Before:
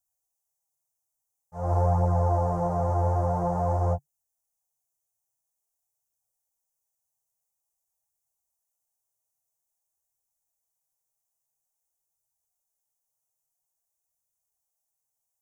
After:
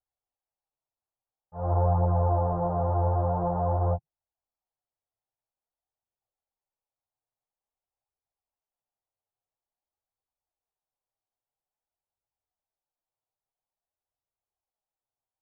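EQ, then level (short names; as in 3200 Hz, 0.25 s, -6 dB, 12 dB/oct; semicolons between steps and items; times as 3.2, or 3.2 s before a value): LPF 1500 Hz 24 dB/oct; air absorption 170 m; bell 140 Hz -5.5 dB 0.35 oct; 0.0 dB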